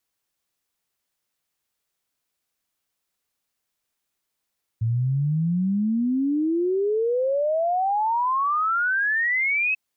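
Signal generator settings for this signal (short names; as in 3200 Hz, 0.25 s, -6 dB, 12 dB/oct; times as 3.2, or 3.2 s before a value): log sweep 110 Hz -> 2600 Hz 4.94 s -19.5 dBFS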